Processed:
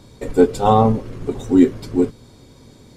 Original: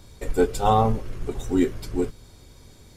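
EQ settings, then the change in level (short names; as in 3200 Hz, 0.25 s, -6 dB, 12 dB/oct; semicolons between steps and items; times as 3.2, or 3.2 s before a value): ten-band EQ 125 Hz +9 dB, 250 Hz +12 dB, 500 Hz +8 dB, 1000 Hz +7 dB, 2000 Hz +4 dB, 4000 Hz +6 dB, 8000 Hz +4 dB; -5.0 dB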